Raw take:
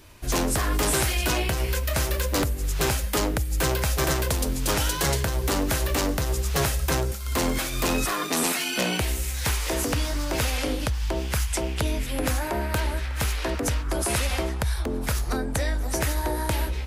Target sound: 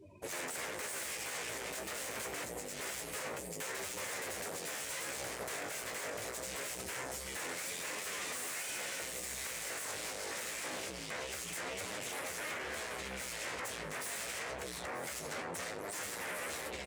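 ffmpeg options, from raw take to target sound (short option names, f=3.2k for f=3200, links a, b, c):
-filter_complex "[0:a]afftdn=nr=32:nf=-46,asoftclip=type=tanh:threshold=-27.5dB,acontrast=89,asplit=2[a][b];[b]highpass=f=720:p=1,volume=11dB,asoftclip=type=tanh:threshold=-20dB[c];[a][c]amix=inputs=2:normalize=0,lowpass=f=4.8k:p=1,volume=-6dB,equalizer=f=1.6k:t=o:w=0.81:g=-14.5,aeval=exprs='0.0282*(abs(mod(val(0)/0.0282+3,4)-2)-1)':c=same,aecho=1:1:936:0.211,flanger=delay=9.7:depth=9.9:regen=31:speed=0.25:shape=triangular,aeval=exprs='val(0)+0.00126*(sin(2*PI*50*n/s)+sin(2*PI*2*50*n/s)/2+sin(2*PI*3*50*n/s)/3+sin(2*PI*4*50*n/s)/4+sin(2*PI*5*50*n/s)/5)':c=same,equalizer=f=500:t=o:w=1:g=11,equalizer=f=2k:t=o:w=1:g=9,equalizer=f=8k:t=o:w=1:g=10,alimiter=level_in=3dB:limit=-24dB:level=0:latency=1,volume=-3dB,highpass=f=87:w=0.5412,highpass=f=87:w=1.3066,volume=-5dB"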